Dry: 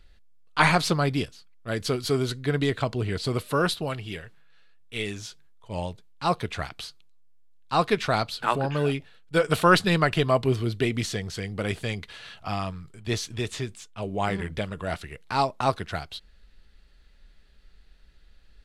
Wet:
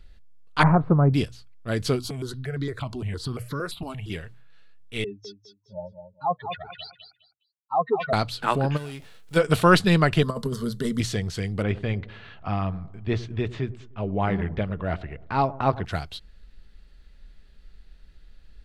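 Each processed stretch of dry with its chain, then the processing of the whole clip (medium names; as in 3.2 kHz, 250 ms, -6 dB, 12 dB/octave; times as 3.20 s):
0.63–1.14 s: low-pass 1.2 kHz 24 dB/octave + peaking EQ 110 Hz +5 dB 0.99 oct
1.99–4.10 s: compression 2.5:1, threshold -29 dBFS + stepped phaser 8.7 Hz 500–2700 Hz
5.04–8.13 s: spectral contrast enhancement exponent 3.7 + band-pass 340–5800 Hz + feedback delay 206 ms, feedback 22%, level -8.5 dB
8.76–9.35 s: formants flattened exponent 0.6 + compression, threshold -36 dBFS
10.22–11.00 s: treble shelf 4.9 kHz +6.5 dB + compressor with a negative ratio -23 dBFS, ratio -0.5 + static phaser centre 490 Hz, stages 8
11.62–15.85 s: low-pass 2.4 kHz + feedback echo behind a low-pass 102 ms, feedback 50%, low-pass 930 Hz, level -17 dB
whole clip: bass shelf 300 Hz +6.5 dB; hum notches 60/120 Hz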